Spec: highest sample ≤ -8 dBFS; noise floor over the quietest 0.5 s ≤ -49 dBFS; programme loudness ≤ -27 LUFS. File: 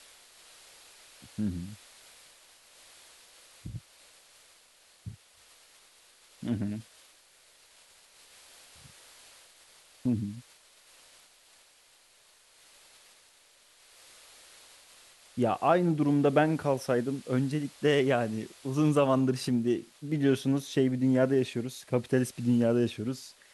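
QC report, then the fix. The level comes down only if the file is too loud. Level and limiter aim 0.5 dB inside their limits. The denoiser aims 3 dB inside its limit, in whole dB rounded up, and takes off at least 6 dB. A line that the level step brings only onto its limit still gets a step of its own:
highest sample -11.0 dBFS: OK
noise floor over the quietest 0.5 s -61 dBFS: OK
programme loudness -28.5 LUFS: OK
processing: none

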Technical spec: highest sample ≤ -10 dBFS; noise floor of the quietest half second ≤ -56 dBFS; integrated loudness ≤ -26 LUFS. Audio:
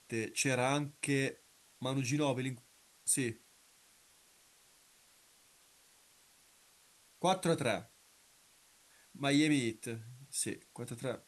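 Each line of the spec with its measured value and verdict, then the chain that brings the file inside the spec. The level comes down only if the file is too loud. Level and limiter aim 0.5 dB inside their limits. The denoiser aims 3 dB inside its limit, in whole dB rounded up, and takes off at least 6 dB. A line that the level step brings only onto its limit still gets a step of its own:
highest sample -17.5 dBFS: OK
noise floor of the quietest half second -66 dBFS: OK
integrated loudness -34.5 LUFS: OK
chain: none

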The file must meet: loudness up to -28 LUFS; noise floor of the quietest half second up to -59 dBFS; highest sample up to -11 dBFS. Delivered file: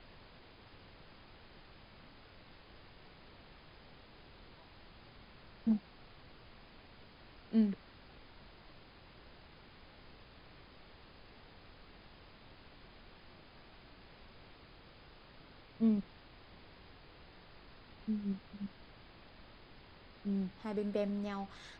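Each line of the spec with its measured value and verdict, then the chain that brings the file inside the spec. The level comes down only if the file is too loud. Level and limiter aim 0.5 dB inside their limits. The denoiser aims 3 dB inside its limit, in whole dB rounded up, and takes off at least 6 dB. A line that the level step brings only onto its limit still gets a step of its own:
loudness -37.5 LUFS: OK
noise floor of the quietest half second -58 dBFS: fail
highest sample -20.5 dBFS: OK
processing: denoiser 6 dB, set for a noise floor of -58 dBFS

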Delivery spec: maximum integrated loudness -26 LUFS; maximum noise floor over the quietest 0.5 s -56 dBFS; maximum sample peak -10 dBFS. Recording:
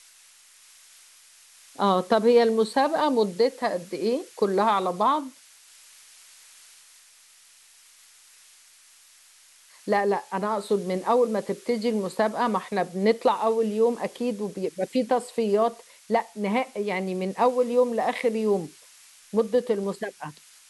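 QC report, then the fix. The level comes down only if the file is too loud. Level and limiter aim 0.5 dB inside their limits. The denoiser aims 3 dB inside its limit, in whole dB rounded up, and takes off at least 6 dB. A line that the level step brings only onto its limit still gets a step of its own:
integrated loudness -25.0 LUFS: fail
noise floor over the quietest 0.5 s -55 dBFS: fail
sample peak -7.0 dBFS: fail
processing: gain -1.5 dB; limiter -10.5 dBFS

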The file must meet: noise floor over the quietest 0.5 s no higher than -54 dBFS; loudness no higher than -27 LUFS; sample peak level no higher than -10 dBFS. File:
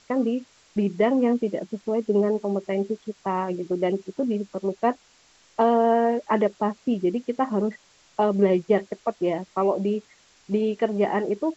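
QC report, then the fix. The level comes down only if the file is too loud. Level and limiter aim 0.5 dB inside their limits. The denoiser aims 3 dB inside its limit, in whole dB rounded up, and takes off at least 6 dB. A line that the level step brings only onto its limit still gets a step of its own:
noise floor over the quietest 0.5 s -58 dBFS: OK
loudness -24.5 LUFS: fail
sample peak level -8.5 dBFS: fail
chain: gain -3 dB

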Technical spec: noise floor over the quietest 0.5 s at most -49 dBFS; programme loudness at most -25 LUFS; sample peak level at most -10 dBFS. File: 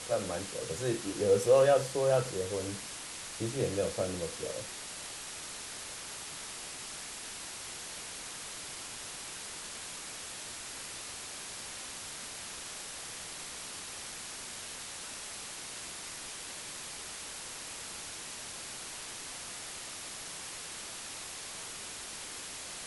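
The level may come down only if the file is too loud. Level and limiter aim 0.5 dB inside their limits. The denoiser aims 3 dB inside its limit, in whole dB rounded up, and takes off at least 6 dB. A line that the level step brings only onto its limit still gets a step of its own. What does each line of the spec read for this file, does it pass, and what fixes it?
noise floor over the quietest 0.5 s -43 dBFS: fail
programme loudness -36.5 LUFS: OK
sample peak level -14.0 dBFS: OK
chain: denoiser 9 dB, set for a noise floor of -43 dBFS

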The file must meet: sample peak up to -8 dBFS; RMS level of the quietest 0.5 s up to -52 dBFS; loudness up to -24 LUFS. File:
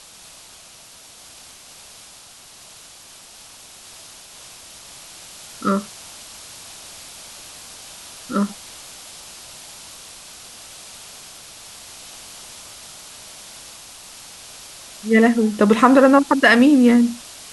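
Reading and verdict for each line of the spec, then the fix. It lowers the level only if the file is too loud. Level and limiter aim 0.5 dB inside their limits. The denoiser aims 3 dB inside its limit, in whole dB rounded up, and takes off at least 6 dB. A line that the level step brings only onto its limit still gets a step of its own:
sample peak -2.0 dBFS: fail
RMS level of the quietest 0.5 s -44 dBFS: fail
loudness -15.5 LUFS: fail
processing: gain -9 dB

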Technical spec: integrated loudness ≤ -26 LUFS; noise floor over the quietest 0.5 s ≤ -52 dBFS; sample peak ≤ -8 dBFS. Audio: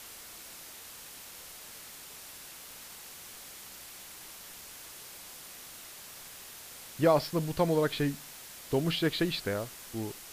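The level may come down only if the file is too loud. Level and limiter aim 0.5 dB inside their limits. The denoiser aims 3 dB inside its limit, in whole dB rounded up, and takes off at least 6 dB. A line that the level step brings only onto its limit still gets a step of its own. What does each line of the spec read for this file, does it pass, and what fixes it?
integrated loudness -35.0 LUFS: OK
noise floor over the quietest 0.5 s -48 dBFS: fail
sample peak -13.0 dBFS: OK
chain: denoiser 7 dB, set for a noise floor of -48 dBFS

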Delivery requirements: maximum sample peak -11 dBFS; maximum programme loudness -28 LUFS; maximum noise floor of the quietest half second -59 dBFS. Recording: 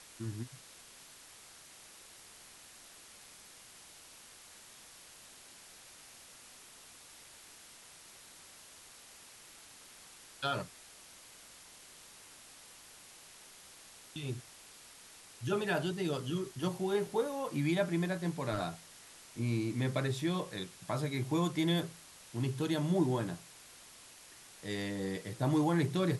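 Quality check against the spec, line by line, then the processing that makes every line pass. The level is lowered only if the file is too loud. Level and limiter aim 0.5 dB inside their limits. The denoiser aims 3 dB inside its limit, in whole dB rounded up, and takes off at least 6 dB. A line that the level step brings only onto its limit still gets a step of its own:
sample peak -18.5 dBFS: OK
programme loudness -35.0 LUFS: OK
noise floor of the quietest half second -56 dBFS: fail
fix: denoiser 6 dB, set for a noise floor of -56 dBFS

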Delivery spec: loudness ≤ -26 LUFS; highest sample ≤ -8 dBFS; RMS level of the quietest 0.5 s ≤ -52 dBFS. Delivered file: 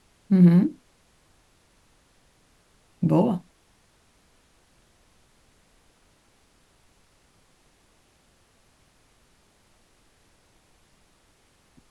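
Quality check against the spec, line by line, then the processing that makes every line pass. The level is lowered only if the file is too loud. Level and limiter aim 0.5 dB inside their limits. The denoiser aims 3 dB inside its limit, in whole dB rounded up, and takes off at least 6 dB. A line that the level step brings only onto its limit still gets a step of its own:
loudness -21.0 LUFS: fail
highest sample -7.0 dBFS: fail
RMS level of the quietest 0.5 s -62 dBFS: OK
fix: gain -5.5 dB

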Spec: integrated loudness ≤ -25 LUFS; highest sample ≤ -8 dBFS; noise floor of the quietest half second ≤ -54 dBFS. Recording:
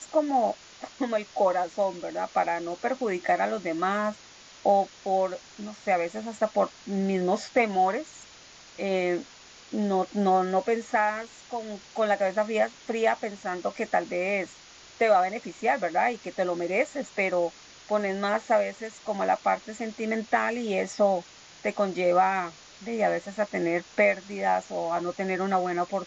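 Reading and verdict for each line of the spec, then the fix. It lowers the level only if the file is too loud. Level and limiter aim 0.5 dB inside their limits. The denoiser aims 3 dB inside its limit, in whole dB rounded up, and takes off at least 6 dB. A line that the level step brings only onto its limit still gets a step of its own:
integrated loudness -27.5 LUFS: OK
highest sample -9.5 dBFS: OK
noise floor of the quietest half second -50 dBFS: fail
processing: denoiser 7 dB, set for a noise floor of -50 dBFS

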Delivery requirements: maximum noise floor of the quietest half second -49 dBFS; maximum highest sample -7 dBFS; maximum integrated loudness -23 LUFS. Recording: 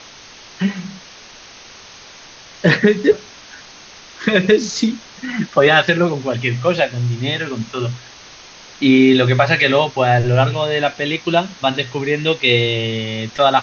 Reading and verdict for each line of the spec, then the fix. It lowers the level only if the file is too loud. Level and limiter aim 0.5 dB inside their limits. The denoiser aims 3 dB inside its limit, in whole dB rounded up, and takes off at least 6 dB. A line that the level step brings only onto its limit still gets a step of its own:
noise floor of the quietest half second -40 dBFS: fail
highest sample -1.5 dBFS: fail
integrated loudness -16.5 LUFS: fail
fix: denoiser 6 dB, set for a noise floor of -40 dBFS; gain -7 dB

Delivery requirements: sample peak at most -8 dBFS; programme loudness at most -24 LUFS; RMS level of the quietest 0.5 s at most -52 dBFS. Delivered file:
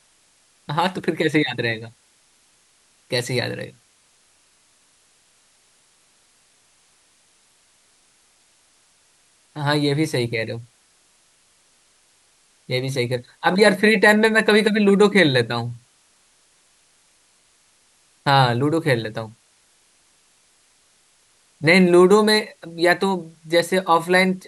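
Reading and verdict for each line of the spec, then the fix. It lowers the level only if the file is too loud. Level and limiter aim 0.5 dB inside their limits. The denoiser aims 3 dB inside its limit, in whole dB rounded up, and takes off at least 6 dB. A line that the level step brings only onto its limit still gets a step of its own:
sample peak -2.0 dBFS: fail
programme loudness -18.5 LUFS: fail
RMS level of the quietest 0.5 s -59 dBFS: OK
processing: gain -6 dB; limiter -8.5 dBFS

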